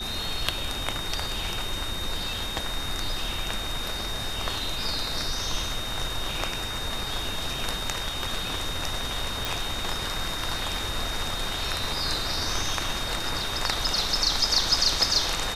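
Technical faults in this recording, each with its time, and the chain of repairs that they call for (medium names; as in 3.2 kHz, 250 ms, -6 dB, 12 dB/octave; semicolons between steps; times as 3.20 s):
whine 3.7 kHz -33 dBFS
9.45 s: pop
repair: de-click; band-stop 3.7 kHz, Q 30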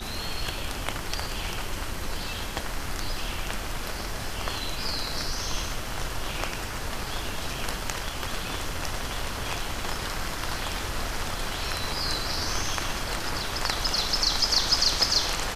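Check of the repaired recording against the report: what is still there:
nothing left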